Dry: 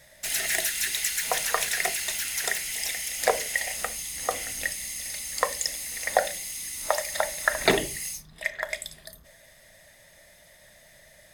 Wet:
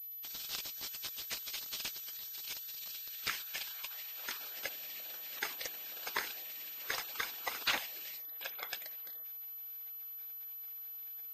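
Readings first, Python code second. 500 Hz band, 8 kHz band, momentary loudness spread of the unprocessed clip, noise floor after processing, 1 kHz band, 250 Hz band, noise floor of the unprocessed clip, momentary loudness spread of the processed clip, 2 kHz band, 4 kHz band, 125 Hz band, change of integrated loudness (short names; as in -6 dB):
-23.0 dB, -18.5 dB, 8 LU, -46 dBFS, -15.5 dB, -19.5 dB, -55 dBFS, 6 LU, -13.0 dB, -8.5 dB, -19.5 dB, -12.5 dB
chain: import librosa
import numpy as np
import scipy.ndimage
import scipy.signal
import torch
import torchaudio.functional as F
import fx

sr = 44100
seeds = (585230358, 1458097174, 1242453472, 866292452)

y = fx.spec_gate(x, sr, threshold_db=-15, keep='weak')
y = fx.peak_eq(y, sr, hz=920.0, db=-4.0, octaves=0.31)
y = fx.filter_sweep_highpass(y, sr, from_hz=3100.0, to_hz=350.0, start_s=2.87, end_s=4.66, q=0.73)
y = fx.low_shelf(y, sr, hz=140.0, db=-8.5)
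y = np.clip(10.0 ** (23.0 / 20.0) * y, -1.0, 1.0) / 10.0 ** (23.0 / 20.0)
y = fx.hpss(y, sr, part='harmonic', gain_db=-9)
y = fx.pwm(y, sr, carrier_hz=12000.0)
y = y * 10.0 ** (1.5 / 20.0)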